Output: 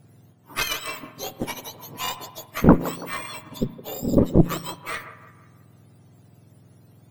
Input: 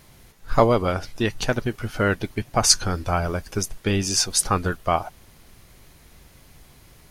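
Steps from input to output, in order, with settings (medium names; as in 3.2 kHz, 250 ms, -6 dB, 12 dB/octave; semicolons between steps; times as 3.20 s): spectrum inverted on a logarithmic axis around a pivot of 1.2 kHz; 3.56–4.15 s: peaking EQ 13 kHz -> 2.5 kHz -13 dB 1.2 oct; spring tank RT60 1 s, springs 35 ms, chirp 25 ms, DRR 13.5 dB; Chebyshev shaper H 6 -9 dB, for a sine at 3.5 dBFS; on a send: feedback echo behind a band-pass 165 ms, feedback 44%, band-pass 830 Hz, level -11 dB; on the sum: trim -6 dB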